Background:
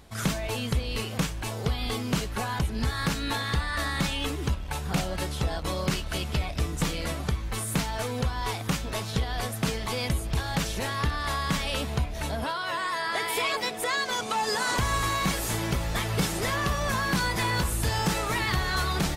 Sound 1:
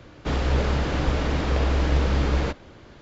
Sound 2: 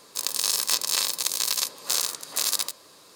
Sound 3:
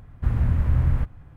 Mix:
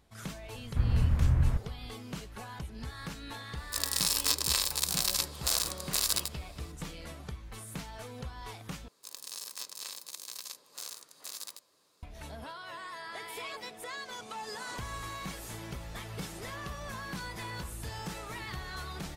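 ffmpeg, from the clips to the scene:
ffmpeg -i bed.wav -i cue0.wav -i cue1.wav -i cue2.wav -filter_complex "[2:a]asplit=2[link_01][link_02];[0:a]volume=-13.5dB[link_03];[link_01]bandreject=frequency=6400:width=14[link_04];[link_03]asplit=2[link_05][link_06];[link_05]atrim=end=8.884[link_07];[link_02]atrim=end=3.15,asetpts=PTS-STARTPTS,volume=-17.5dB[link_08];[link_06]atrim=start=12.026[link_09];[3:a]atrim=end=1.36,asetpts=PTS-STARTPTS,volume=-5dB,afade=type=in:duration=0.004:curve=hsin,afade=type=out:start_time=1.356:duration=0.004:curve=hsin,adelay=530[link_10];[link_04]atrim=end=3.15,asetpts=PTS-STARTPTS,volume=-4dB,afade=type=in:duration=0.004:curve=hsin,afade=type=out:start_time=3.146:duration=0.004:curve=hsin,adelay=157437S[link_11];[link_07][link_08]acrossfade=duration=0.004:curve1=hsin:curve2=hsin[link_12];[link_12][link_09]acrossfade=duration=0.004:curve1=hsin:curve2=hsin[link_13];[link_13][link_10][link_11]amix=inputs=3:normalize=0" out.wav

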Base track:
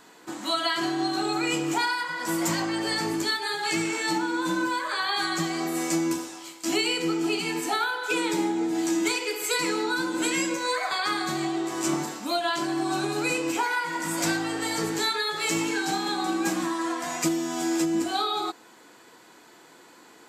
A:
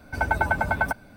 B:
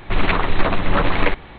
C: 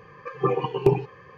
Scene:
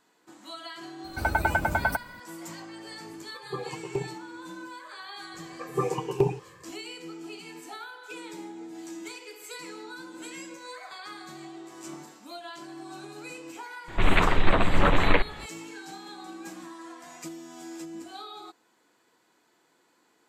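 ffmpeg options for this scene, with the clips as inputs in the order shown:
ffmpeg -i bed.wav -i cue0.wav -i cue1.wav -i cue2.wav -filter_complex "[3:a]asplit=2[link_01][link_02];[0:a]volume=-15dB[link_03];[1:a]highshelf=frequency=9700:gain=11.5,atrim=end=1.16,asetpts=PTS-STARTPTS,volume=-2dB,afade=type=in:duration=0.004:curve=hsin,afade=type=out:start_time=1.156:duration=0.004:curve=hsin,adelay=1040[link_04];[link_01]atrim=end=1.37,asetpts=PTS-STARTPTS,volume=-12.5dB,afade=type=in:duration=0.004:curve=hsin,afade=type=out:start_time=1.366:duration=0.004:curve=hsin,adelay=136269S[link_05];[link_02]atrim=end=1.37,asetpts=PTS-STARTPTS,volume=-4.5dB,afade=type=in:duration=0.004:curve=hsin,afade=type=out:start_time=1.366:duration=0.004:curve=hsin,adelay=5340[link_06];[2:a]atrim=end=1.58,asetpts=PTS-STARTPTS,volume=-3dB,afade=type=in:duration=0.004:curve=hsin,afade=type=out:start_time=1.576:duration=0.004:curve=hsin,adelay=13880[link_07];[link_03][link_04][link_05][link_06][link_07]amix=inputs=5:normalize=0" out.wav

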